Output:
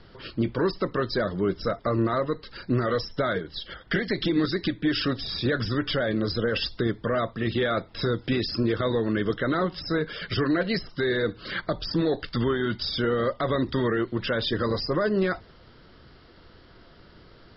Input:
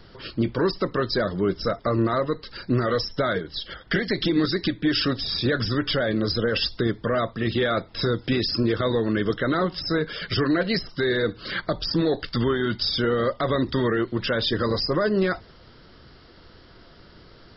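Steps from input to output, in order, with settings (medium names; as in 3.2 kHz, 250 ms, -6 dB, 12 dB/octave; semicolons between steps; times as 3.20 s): low-pass 4.6 kHz 12 dB/octave; trim -2 dB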